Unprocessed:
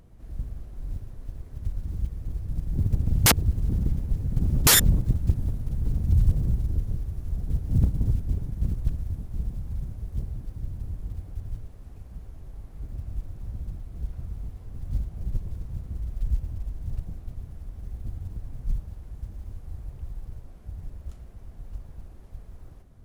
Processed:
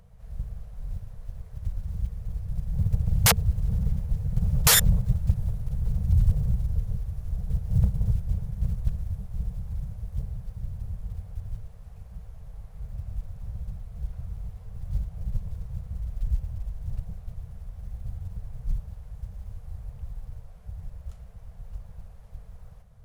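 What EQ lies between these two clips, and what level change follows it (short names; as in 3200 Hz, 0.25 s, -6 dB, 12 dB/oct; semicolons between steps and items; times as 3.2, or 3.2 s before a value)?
Chebyshev band-stop 200–440 Hz, order 4; 0.0 dB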